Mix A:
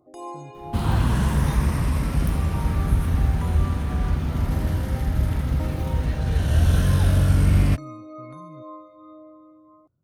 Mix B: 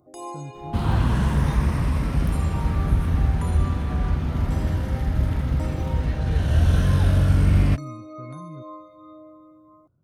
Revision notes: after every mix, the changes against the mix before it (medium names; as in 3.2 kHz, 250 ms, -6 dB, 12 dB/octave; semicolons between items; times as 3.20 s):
speech +6.0 dB; first sound: add treble shelf 3.9 kHz +8.5 dB; second sound: add treble shelf 7.7 kHz -10.5 dB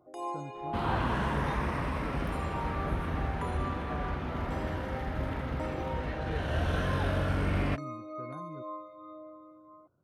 speech +4.0 dB; master: add tone controls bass -14 dB, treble -13 dB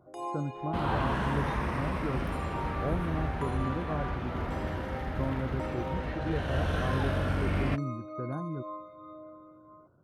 speech +9.5 dB